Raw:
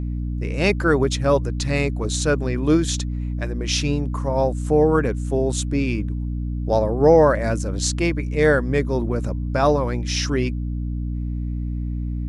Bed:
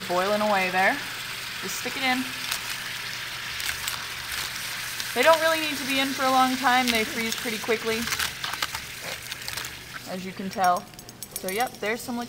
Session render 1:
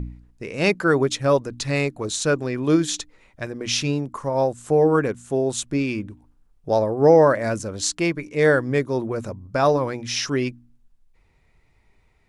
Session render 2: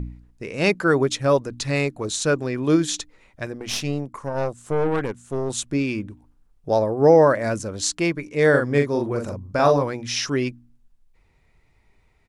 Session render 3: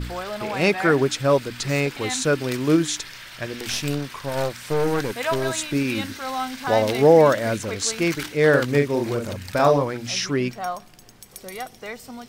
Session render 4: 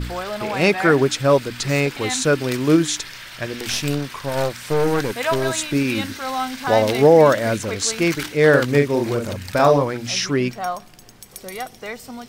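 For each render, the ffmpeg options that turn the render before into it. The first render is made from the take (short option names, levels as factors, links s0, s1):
-af "bandreject=f=60:t=h:w=4,bandreject=f=120:t=h:w=4,bandreject=f=180:t=h:w=4,bandreject=f=240:t=h:w=4,bandreject=f=300:t=h:w=4"
-filter_complex "[0:a]asettb=1/sr,asplit=3[s0][s1][s2];[s0]atrim=end=3.554[s3];[s1]atrim=start=3.55:end=5.5,asetpts=PTS-STARTPTS,afade=t=in:d=0.004:c=qsin,afade=t=out:st=1.946:d=0.004:c=qsin,aeval=exprs='(tanh(7.08*val(0)+0.7)-tanh(0.7))/7.08':c=same[s4];[s2]atrim=start=5.496[s5];[s3][s4]acrossfade=d=0.004:c1=hsin:c2=qsin[s6];[s6][s5]acrossfade=d=0.004:c1=qsin:c2=hsin,asplit=3[s7][s8][s9];[s7]afade=t=out:st=8.53:d=0.02[s10];[s8]asplit=2[s11][s12];[s12]adelay=42,volume=0.596[s13];[s11][s13]amix=inputs=2:normalize=0,afade=t=in:st=8.53:d=0.02,afade=t=out:st=9.82:d=0.02[s14];[s9]afade=t=in:st=9.82:d=0.02[s15];[s10][s14][s15]amix=inputs=3:normalize=0"
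-filter_complex "[1:a]volume=0.447[s0];[0:a][s0]amix=inputs=2:normalize=0"
-af "volume=1.41,alimiter=limit=0.708:level=0:latency=1"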